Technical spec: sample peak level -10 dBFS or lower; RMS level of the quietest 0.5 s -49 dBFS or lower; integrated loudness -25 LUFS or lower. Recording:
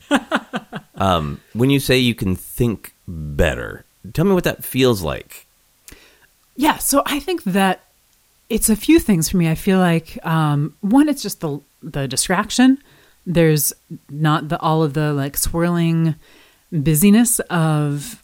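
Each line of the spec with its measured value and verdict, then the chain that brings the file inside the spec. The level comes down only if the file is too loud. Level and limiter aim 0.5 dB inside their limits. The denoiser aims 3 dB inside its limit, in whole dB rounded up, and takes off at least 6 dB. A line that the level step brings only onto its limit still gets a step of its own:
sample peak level -2.5 dBFS: fail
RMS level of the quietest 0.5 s -58 dBFS: OK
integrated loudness -18.0 LUFS: fail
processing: gain -7.5 dB; limiter -10.5 dBFS

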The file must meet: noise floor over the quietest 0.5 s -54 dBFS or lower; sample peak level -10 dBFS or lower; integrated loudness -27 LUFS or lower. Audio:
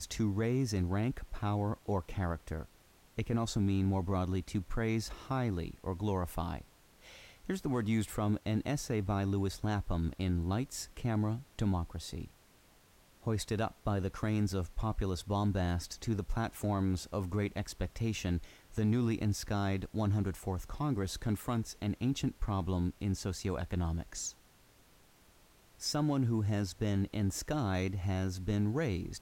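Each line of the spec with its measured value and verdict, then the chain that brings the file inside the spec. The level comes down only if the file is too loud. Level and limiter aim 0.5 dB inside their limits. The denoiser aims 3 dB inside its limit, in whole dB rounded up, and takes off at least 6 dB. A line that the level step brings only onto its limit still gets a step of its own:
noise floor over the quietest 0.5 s -63 dBFS: OK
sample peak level -21.5 dBFS: OK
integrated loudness -35.0 LUFS: OK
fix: none

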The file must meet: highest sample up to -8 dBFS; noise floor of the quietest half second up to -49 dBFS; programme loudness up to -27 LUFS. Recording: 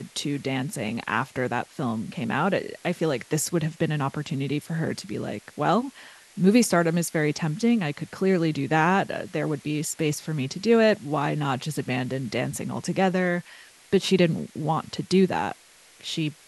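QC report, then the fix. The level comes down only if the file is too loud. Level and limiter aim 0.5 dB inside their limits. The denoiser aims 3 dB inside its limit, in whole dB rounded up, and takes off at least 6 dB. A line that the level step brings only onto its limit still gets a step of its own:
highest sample -7.0 dBFS: fail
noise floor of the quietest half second -53 dBFS: OK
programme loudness -25.5 LUFS: fail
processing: gain -2 dB

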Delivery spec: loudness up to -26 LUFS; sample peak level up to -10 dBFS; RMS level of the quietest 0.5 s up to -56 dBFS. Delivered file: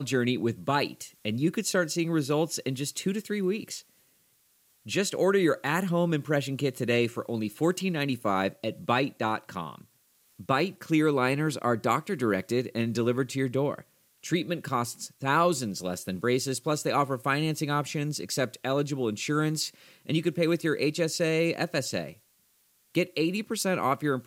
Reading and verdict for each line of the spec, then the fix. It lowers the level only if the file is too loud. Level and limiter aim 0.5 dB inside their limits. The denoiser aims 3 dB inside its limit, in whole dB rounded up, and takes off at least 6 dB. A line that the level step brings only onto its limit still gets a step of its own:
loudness -28.0 LUFS: OK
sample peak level -11.0 dBFS: OK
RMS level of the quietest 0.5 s -67 dBFS: OK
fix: none

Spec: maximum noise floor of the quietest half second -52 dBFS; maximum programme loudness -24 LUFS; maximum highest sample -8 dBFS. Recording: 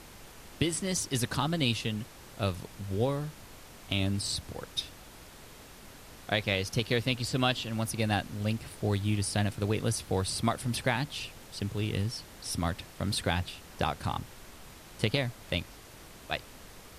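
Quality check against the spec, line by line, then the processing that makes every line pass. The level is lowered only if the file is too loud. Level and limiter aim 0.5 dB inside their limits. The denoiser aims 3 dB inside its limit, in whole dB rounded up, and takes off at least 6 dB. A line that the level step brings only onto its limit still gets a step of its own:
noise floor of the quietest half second -50 dBFS: fail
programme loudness -32.0 LUFS: OK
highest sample -13.5 dBFS: OK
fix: denoiser 6 dB, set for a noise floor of -50 dBFS

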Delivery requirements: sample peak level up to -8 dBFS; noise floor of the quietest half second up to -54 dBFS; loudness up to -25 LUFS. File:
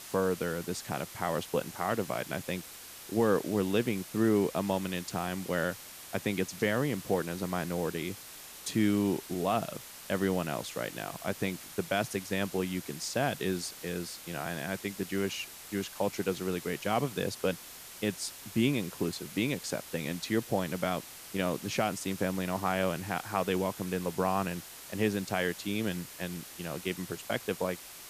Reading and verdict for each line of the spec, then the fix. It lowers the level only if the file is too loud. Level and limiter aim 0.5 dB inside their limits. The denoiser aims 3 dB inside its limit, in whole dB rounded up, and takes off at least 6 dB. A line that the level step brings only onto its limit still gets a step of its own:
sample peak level -15.0 dBFS: OK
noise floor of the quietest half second -48 dBFS: fail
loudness -33.0 LUFS: OK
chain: denoiser 9 dB, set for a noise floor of -48 dBFS

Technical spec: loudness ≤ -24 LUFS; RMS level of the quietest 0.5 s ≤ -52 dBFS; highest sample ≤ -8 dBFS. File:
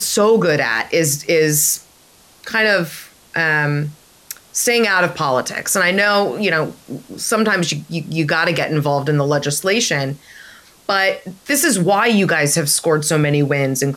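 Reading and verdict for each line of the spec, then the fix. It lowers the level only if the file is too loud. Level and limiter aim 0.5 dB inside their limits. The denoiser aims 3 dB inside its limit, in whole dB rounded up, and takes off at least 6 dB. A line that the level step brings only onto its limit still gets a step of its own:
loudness -16.5 LUFS: fail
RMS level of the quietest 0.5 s -49 dBFS: fail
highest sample -5.0 dBFS: fail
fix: gain -8 dB

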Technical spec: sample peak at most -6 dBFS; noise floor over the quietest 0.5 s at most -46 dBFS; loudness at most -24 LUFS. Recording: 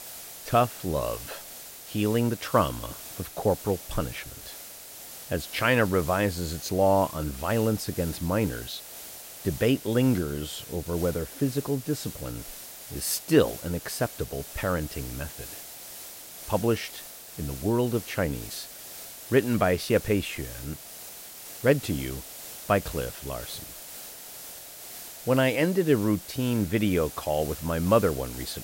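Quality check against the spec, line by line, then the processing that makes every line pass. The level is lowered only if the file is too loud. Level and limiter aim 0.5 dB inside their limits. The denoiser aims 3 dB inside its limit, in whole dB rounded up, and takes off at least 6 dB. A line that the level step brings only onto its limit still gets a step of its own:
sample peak -6.5 dBFS: OK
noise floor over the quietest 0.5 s -44 dBFS: fail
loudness -27.5 LUFS: OK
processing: denoiser 6 dB, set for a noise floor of -44 dBFS

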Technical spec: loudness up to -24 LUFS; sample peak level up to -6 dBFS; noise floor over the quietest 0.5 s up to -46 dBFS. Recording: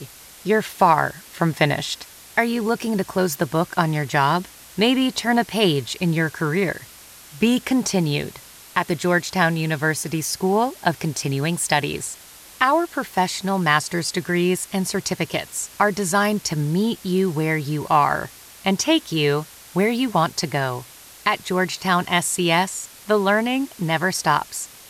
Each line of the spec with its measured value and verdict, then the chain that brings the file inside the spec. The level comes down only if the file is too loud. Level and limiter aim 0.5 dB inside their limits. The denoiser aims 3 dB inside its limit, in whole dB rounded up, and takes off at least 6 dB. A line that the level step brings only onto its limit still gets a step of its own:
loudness -21.5 LUFS: fail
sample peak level -3.5 dBFS: fail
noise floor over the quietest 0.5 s -44 dBFS: fail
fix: gain -3 dB

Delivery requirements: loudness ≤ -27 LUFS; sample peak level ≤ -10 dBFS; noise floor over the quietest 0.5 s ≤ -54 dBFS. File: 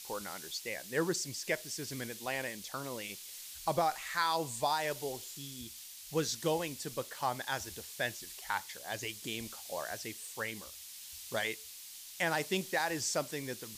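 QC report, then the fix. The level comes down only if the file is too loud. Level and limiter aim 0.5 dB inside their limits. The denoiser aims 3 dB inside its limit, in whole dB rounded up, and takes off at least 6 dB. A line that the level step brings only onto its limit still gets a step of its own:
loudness -36.5 LUFS: OK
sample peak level -19.0 dBFS: OK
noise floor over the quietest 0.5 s -49 dBFS: fail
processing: denoiser 8 dB, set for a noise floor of -49 dBFS

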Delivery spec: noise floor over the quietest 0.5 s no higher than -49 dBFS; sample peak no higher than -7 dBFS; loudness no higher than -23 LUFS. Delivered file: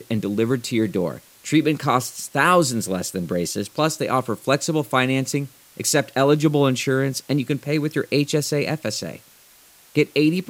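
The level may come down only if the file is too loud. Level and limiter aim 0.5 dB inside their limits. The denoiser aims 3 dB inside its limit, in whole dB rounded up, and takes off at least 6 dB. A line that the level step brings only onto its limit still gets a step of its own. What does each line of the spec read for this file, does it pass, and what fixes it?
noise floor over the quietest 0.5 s -51 dBFS: OK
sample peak -3.5 dBFS: fail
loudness -21.5 LUFS: fail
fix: gain -2 dB; limiter -7.5 dBFS

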